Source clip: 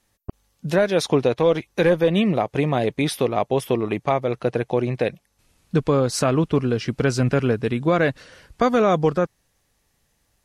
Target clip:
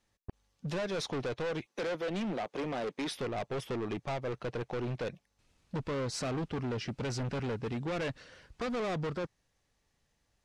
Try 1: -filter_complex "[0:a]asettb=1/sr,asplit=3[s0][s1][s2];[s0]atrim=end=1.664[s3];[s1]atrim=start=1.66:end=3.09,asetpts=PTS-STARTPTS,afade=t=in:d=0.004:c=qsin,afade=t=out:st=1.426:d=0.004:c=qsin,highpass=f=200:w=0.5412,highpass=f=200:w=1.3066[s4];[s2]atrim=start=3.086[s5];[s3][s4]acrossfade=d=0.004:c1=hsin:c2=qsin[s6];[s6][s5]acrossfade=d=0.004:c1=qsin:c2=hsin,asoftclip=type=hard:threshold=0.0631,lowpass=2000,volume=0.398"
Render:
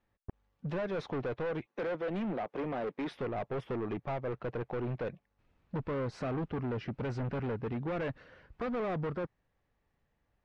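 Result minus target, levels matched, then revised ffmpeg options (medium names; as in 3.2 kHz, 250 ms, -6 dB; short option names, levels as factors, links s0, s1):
8 kHz band -19.0 dB
-filter_complex "[0:a]asettb=1/sr,asplit=3[s0][s1][s2];[s0]atrim=end=1.664[s3];[s1]atrim=start=1.66:end=3.09,asetpts=PTS-STARTPTS,afade=t=in:d=0.004:c=qsin,afade=t=out:st=1.426:d=0.004:c=qsin,highpass=f=200:w=0.5412,highpass=f=200:w=1.3066[s4];[s2]atrim=start=3.086[s5];[s3][s4]acrossfade=d=0.004:c1=hsin:c2=qsin[s6];[s6][s5]acrossfade=d=0.004:c1=qsin:c2=hsin,asoftclip=type=hard:threshold=0.0631,lowpass=7100,volume=0.398"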